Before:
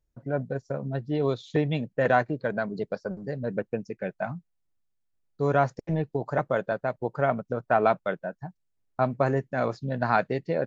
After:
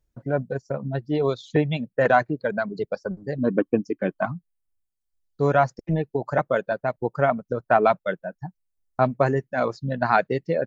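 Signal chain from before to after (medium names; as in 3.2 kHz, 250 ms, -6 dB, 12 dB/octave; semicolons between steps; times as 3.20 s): reverb removal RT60 1.5 s; 3.38–4.26 s: small resonant body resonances 290/1100/3100 Hz, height 16 dB, ringing for 40 ms; trim +4.5 dB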